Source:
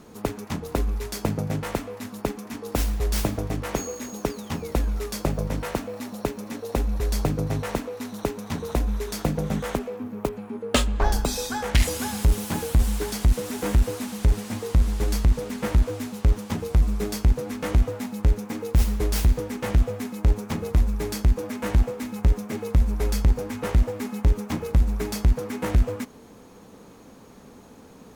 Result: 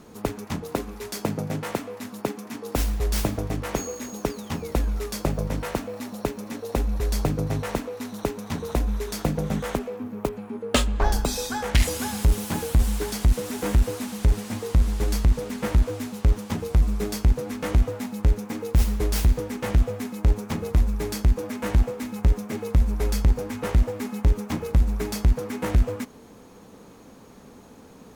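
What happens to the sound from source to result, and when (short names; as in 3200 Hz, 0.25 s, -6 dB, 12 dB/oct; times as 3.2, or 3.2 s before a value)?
0.62–2.76 HPF 130 Hz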